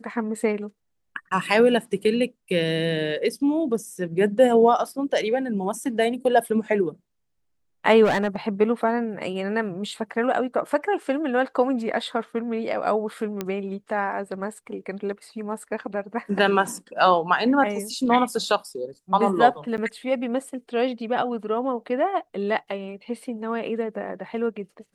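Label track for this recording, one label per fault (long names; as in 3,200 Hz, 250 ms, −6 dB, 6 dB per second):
8.040000	8.360000	clipping −17.5 dBFS
13.410000	13.410000	click −13 dBFS
19.770000	19.780000	drop-out 9.3 ms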